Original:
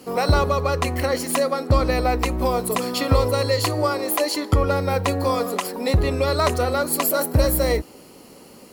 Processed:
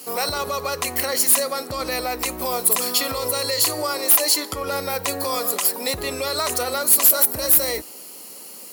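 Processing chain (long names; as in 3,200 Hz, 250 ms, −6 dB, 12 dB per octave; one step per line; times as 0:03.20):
brickwall limiter −14.5 dBFS, peak gain reduction 8 dB
RIAA equalisation recording
gain into a clipping stage and back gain 8 dB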